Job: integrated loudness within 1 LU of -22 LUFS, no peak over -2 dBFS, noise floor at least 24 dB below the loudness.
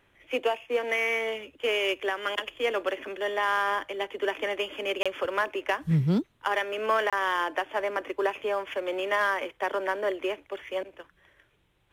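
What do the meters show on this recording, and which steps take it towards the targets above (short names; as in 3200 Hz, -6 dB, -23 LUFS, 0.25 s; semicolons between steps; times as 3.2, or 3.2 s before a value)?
dropouts 2; longest dropout 26 ms; loudness -28.5 LUFS; peak -14.0 dBFS; loudness target -22.0 LUFS
-> interpolate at 5.03/7.1, 26 ms; gain +6.5 dB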